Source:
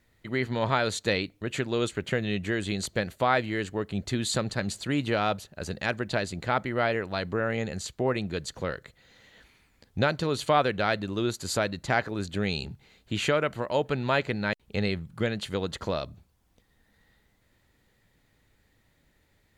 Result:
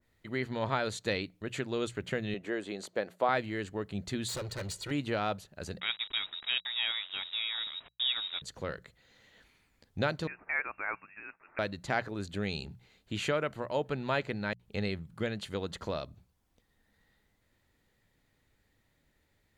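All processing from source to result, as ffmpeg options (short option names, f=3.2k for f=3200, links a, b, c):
-filter_complex "[0:a]asettb=1/sr,asplit=3[a][b][c];[a]atrim=end=2.344[d];[b]atrim=start=2.34:end=3.29,asetpts=PTS-STARTPTS,afade=t=in:d=0.004:c=qsin,afade=t=out:st=0.946:d=0.004:c=qsin,highpass=430,tiltshelf=f=1.3k:g=7[e];[c]atrim=start=3.286[f];[d][e]acrossfade=d=0.004:c1=hsin:c2=qsin[g];[g][f]acrossfade=d=0.004:c1=qsin:c2=hsin,asettb=1/sr,asplit=3[h][i][j];[h]atrim=end=4.284[k];[i]atrim=start=4.28:end=4.91,asetpts=PTS-STARTPTS,afade=t=in:d=0.004:c=qsin,afade=t=out:st=0.626:d=0.004:c=qsin,aecho=1:1:2.1:0.94,atrim=end_sample=27783,volume=28.5dB,asoftclip=hard,volume=-28.5dB[l];[j]atrim=start=4.906[m];[k][l]acrossfade=d=0.004:c1=hsin:c2=qsin[n];[n][m]acrossfade=d=0.004:c1=qsin:c2=hsin,asettb=1/sr,asplit=3[o][p][q];[o]atrim=end=5.804[r];[p]atrim=start=5.8:end=8.42,asetpts=PTS-STARTPTS,afade=t=in:d=0.004:c=qsin,afade=t=out:st=2.616:d=0.004:c=qsin,equalizer=f=120:w=1.3:g=4,aeval=exprs='val(0)*gte(abs(val(0)),0.0211)':c=same,lowpass=f=3.3k:t=q:w=0.5098,lowpass=f=3.3k:t=q:w=0.6013,lowpass=f=3.3k:t=q:w=0.9,lowpass=f=3.3k:t=q:w=2.563,afreqshift=-3900[s];[q]atrim=start=8.416[t];[r][s]acrossfade=d=0.004:c1=hsin:c2=qsin[u];[u][t]acrossfade=d=0.004:c1=qsin:c2=hsin,asettb=1/sr,asplit=3[v][w][x];[v]atrim=end=10.274[y];[w]atrim=start=10.27:end=11.59,asetpts=PTS-STARTPTS,afade=t=in:d=0.004:c=qsin,afade=t=out:st=1.316:d=0.004:c=qsin,highpass=940,lowpass=f=2.5k:t=q:w=0.5098,lowpass=f=2.5k:t=q:w=0.6013,lowpass=f=2.5k:t=q:w=0.9,lowpass=f=2.5k:t=q:w=2.563,afreqshift=-2900[z];[x]atrim=start=11.586[aa];[y][z]acrossfade=d=0.004:c1=hsin:c2=qsin[ab];[ab][aa]acrossfade=d=0.004:c1=qsin:c2=hsin,bandreject=f=60:t=h:w=6,bandreject=f=120:t=h:w=6,bandreject=f=180:t=h:w=6,adynamicequalizer=threshold=0.0141:dfrequency=1800:dqfactor=0.7:tfrequency=1800:tqfactor=0.7:attack=5:release=100:ratio=0.375:range=1.5:mode=cutabove:tftype=highshelf,volume=-5.5dB"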